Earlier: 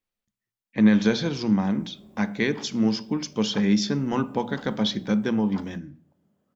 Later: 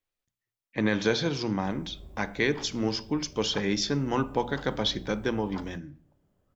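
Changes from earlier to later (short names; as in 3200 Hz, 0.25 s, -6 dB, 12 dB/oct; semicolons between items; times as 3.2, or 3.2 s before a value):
background: remove HPF 180 Hz 12 dB/oct; master: add bell 210 Hz -12.5 dB 0.36 oct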